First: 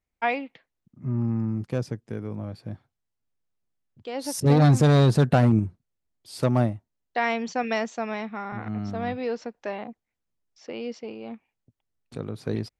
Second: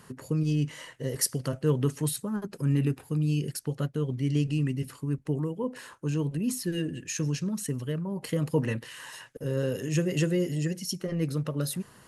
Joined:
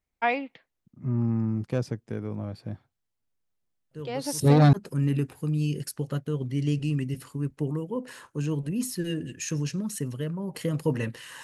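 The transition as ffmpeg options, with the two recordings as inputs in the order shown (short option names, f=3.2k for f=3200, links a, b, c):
-filter_complex "[1:a]asplit=2[a][b];[0:a]apad=whole_dur=11.43,atrim=end=11.43,atrim=end=4.732[c];[b]atrim=start=2.408:end=9.11[d];[a]atrim=start=1.59:end=2.41,asetpts=PTS-STARTPTS,volume=-14dB,afade=t=in:d=0.004:c=hsin,afade=t=out:st=0.816:d=0.004:c=hsin,adelay=3910[e];[c][d]acrossfade=d=0.004:c1=hsin:c2=hsin[f];[f][e]amix=inputs=2:normalize=0"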